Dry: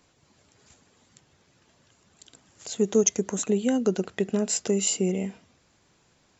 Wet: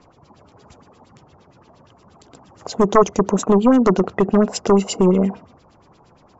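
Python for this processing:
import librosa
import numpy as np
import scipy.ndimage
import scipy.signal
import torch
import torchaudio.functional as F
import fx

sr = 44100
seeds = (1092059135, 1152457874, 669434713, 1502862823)

y = fx.band_shelf(x, sr, hz=2500.0, db=-12.0, octaves=1.7)
y = fx.fold_sine(y, sr, drive_db=10, ceiling_db=-8.0)
y = fx.filter_lfo_lowpass(y, sr, shape='sine', hz=8.6, low_hz=790.0, high_hz=3800.0, q=2.6)
y = y * librosa.db_to_amplitude(-1.0)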